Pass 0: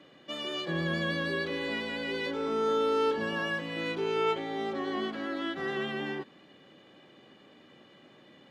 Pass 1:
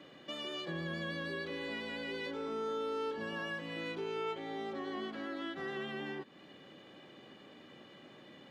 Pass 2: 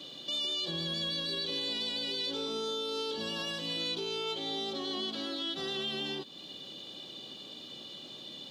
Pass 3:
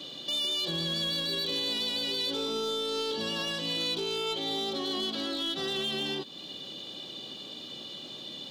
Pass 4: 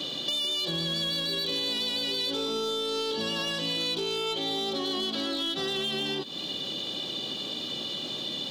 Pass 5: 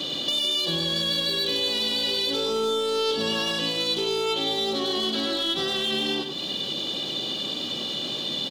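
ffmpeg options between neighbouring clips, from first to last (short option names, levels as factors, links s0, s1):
-af "acompressor=threshold=0.00562:ratio=2,volume=1.12"
-af "highshelf=f=2700:t=q:w=3:g=11.5,alimiter=level_in=1.88:limit=0.0631:level=0:latency=1:release=30,volume=0.531,volume=1.41"
-af "volume=31.6,asoftclip=hard,volume=0.0316,volume=1.58"
-af "acompressor=threshold=0.0141:ratio=4,volume=2.66"
-af "aecho=1:1:99:0.473,volume=1.5"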